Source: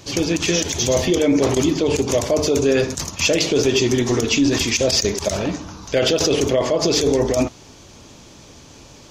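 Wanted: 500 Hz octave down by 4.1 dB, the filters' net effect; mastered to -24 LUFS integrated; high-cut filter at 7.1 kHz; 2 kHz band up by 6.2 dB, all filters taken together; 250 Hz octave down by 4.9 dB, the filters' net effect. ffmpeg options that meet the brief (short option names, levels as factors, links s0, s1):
-af "lowpass=7100,equalizer=f=250:t=o:g=-5,equalizer=f=500:t=o:g=-4,equalizer=f=2000:t=o:g=8.5,volume=0.596"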